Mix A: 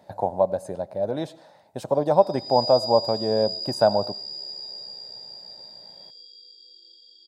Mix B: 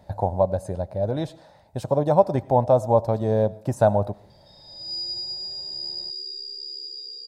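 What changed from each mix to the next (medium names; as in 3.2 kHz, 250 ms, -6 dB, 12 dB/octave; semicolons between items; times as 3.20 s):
background: entry +2.35 s; master: remove high-pass 210 Hz 12 dB/octave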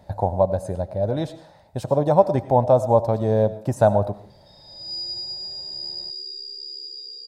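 speech: send +8.0 dB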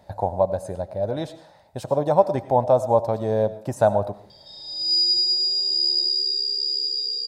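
background +11.0 dB; master: add bass shelf 280 Hz -7 dB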